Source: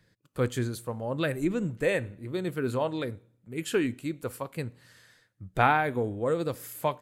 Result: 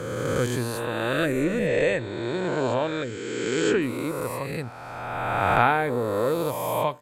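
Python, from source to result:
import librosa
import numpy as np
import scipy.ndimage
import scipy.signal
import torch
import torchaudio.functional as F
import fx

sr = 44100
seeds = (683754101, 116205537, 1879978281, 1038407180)

y = fx.spec_swells(x, sr, rise_s=2.18)
y = fx.brickwall_lowpass(y, sr, high_hz=8200.0, at=(1.66, 3.81), fade=0.02)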